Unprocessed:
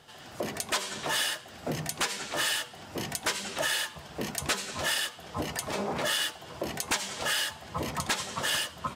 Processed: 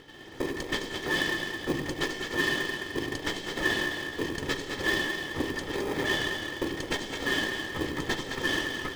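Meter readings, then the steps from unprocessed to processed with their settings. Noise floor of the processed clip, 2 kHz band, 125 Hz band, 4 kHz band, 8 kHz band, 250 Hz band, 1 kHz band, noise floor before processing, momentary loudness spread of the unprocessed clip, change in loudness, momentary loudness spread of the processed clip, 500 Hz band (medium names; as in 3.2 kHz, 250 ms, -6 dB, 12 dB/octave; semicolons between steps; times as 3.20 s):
-41 dBFS, +4.0 dB, +1.5 dB, -2.0 dB, -9.0 dB, +6.5 dB, -2.5 dB, -48 dBFS, 8 LU, +0.5 dB, 5 LU, +3.5 dB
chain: comb filter that takes the minimum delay 2.3 ms; on a send: two-band feedback delay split 410 Hz, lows 97 ms, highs 213 ms, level -6 dB; on the sum: upward compressor, threshold -48 dBFS; Chebyshev low-pass 5.1 kHz, order 2; small resonant body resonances 270/1800/3200 Hz, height 13 dB, ringing for 20 ms; in parallel at -3.5 dB: sample-and-hold 31×; on the sum: trim -5 dB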